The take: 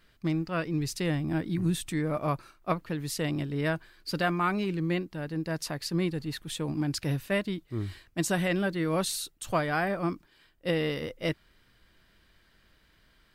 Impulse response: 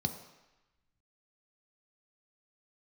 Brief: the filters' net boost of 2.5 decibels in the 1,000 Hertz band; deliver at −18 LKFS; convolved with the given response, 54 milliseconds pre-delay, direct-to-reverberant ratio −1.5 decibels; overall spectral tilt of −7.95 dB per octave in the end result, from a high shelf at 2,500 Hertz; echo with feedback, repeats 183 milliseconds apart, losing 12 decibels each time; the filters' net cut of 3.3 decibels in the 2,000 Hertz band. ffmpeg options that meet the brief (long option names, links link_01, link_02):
-filter_complex "[0:a]equalizer=frequency=1000:width_type=o:gain=5.5,equalizer=frequency=2000:width_type=o:gain=-5,highshelf=frequency=2500:gain=-3.5,aecho=1:1:183|366|549:0.251|0.0628|0.0157,asplit=2[link_01][link_02];[1:a]atrim=start_sample=2205,adelay=54[link_03];[link_02][link_03]afir=irnorm=-1:irlink=0,volume=-1.5dB[link_04];[link_01][link_04]amix=inputs=2:normalize=0,volume=2.5dB"